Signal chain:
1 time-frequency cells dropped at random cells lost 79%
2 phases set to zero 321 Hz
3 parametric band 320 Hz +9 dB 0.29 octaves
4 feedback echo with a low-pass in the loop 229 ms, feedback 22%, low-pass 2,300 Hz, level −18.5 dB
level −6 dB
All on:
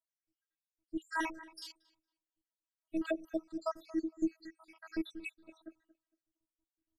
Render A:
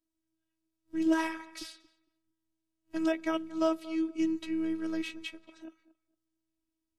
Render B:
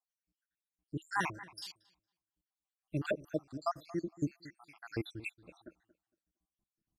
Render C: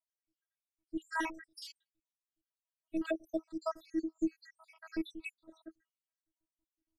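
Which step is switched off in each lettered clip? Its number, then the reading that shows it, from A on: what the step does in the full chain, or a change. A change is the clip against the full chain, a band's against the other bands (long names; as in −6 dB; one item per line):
1, 2 kHz band −4.0 dB
2, 125 Hz band +18.5 dB
4, echo-to-direct ratio −20.0 dB to none audible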